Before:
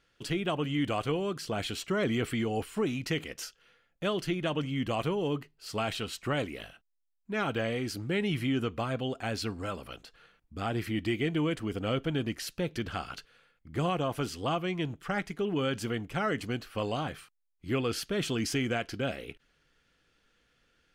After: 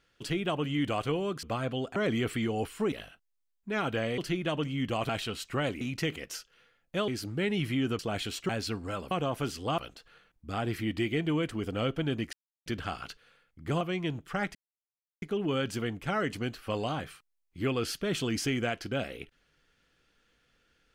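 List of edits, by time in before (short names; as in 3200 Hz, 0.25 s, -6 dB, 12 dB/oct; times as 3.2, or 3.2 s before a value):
1.43–1.93 swap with 8.71–9.24
2.89–4.16 swap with 6.54–7.8
5.07–5.82 cut
12.41–12.74 mute
13.89–14.56 move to 9.86
15.3 insert silence 0.67 s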